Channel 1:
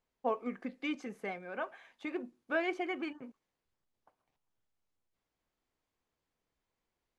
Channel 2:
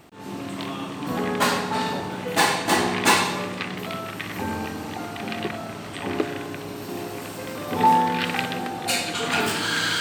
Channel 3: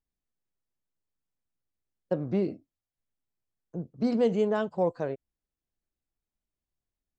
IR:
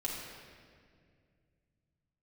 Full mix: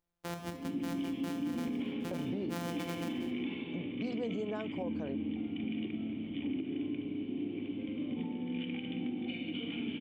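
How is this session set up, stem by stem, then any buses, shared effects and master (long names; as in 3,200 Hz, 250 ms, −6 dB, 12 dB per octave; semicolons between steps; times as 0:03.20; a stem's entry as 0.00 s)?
−5.0 dB, 0.00 s, send −8 dB, samples sorted by size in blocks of 256 samples; high-pass filter 100 Hz 6 dB per octave
−1.0 dB, 0.40 s, send −4 dB, mains-hum notches 50/100/150/200/250 Hz; downward compressor 6 to 1, threshold −25 dBFS, peak gain reduction 12 dB; formant resonators in series i
−4.0 dB, 0.00 s, no send, downward compressor 2 to 1, threshold −32 dBFS, peak gain reduction 7.5 dB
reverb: on, RT60 2.1 s, pre-delay 4 ms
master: brickwall limiter −28 dBFS, peak gain reduction 7.5 dB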